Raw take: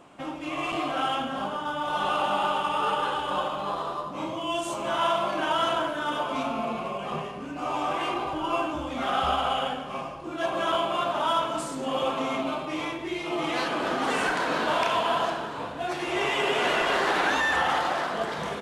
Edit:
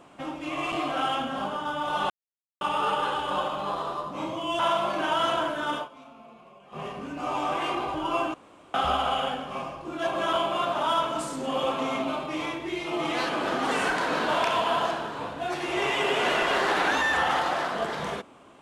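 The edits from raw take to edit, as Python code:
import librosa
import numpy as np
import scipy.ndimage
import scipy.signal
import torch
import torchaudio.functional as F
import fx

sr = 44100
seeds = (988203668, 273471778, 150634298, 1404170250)

y = fx.edit(x, sr, fx.silence(start_s=2.1, length_s=0.51),
    fx.cut(start_s=4.59, length_s=0.39),
    fx.fade_down_up(start_s=6.13, length_s=1.12, db=-19.5, fade_s=0.15),
    fx.room_tone_fill(start_s=8.73, length_s=0.4), tone=tone)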